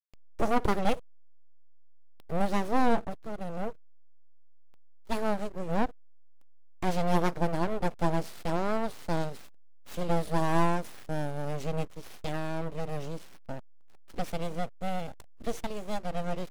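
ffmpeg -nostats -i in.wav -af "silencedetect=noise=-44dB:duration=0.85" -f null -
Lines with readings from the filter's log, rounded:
silence_start: 0.99
silence_end: 2.20 | silence_duration: 1.21
silence_start: 3.75
silence_end: 4.74 | silence_duration: 0.99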